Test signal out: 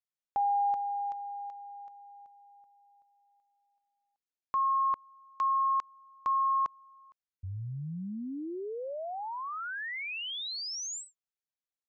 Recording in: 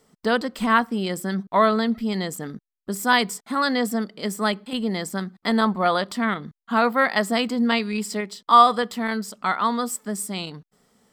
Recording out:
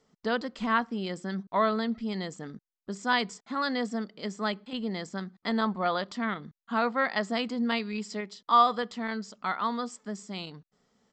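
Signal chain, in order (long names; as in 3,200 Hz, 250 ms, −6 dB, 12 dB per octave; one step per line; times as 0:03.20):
downsampling to 16,000 Hz
level −7.5 dB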